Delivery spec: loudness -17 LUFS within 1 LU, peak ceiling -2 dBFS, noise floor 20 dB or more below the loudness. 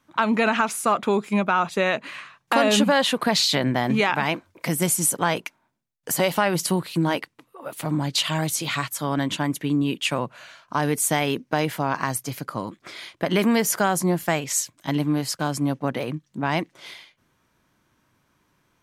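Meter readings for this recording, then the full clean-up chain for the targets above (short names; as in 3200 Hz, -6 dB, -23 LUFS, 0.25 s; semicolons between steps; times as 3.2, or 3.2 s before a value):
loudness -23.0 LUFS; peak -5.5 dBFS; loudness target -17.0 LUFS
-> gain +6 dB; limiter -2 dBFS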